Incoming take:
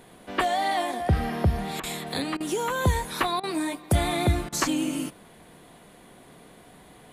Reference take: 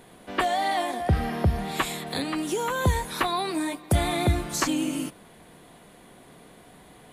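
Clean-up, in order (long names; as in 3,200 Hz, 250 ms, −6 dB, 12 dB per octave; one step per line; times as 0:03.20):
repair the gap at 0:01.80/0:02.37/0:03.40/0:04.49, 33 ms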